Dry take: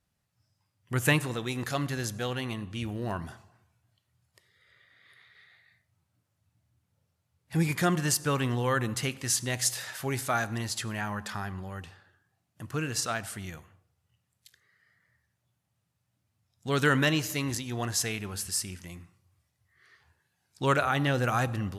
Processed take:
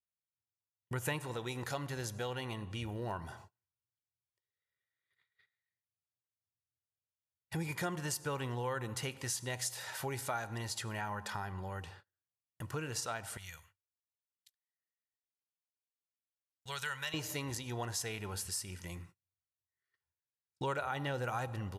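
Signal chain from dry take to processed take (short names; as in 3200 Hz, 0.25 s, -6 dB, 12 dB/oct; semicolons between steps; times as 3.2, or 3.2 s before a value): gate -54 dBFS, range -32 dB; 13.37–17.14 passive tone stack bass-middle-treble 10-0-10; comb 2.1 ms, depth 35%; dynamic EQ 800 Hz, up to +7 dB, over -59 dBFS, Q 2; compressor 2.5:1, threshold -40 dBFS, peak gain reduction 15 dB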